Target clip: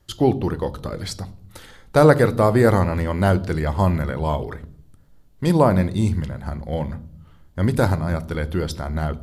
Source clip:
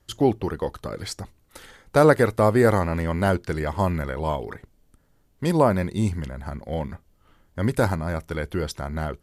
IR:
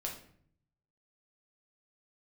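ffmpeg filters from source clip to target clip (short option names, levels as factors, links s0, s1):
-filter_complex "[0:a]asplit=2[s0][s1];[s1]equalizer=f=500:t=o:w=1:g=-4,equalizer=f=2000:t=o:w=1:g=-11,equalizer=f=4000:t=o:w=1:g=8,equalizer=f=8000:t=o:w=1:g=-10[s2];[1:a]atrim=start_sample=2205,lowshelf=f=270:g=7.5[s3];[s2][s3]afir=irnorm=-1:irlink=0,volume=0.447[s4];[s0][s4]amix=inputs=2:normalize=0"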